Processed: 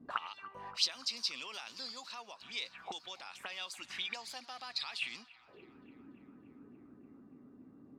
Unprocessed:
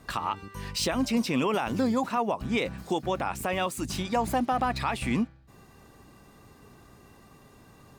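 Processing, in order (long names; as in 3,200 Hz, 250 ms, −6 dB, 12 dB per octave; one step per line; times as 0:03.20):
envelope filter 220–4,600 Hz, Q 4.8, up, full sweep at −26 dBFS
feedback echo with a band-pass in the loop 288 ms, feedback 83%, band-pass 1,300 Hz, level −19 dB
level +6.5 dB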